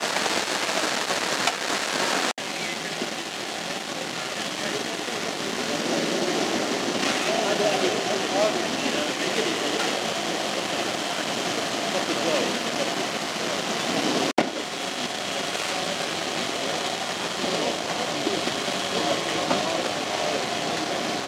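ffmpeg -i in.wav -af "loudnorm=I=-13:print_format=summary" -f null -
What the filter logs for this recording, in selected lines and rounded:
Input Integrated:    -25.2 LUFS
Input True Peak:      -2.1 dBTP
Input LRA:             2.8 LU
Input Threshold:     -35.2 LUFS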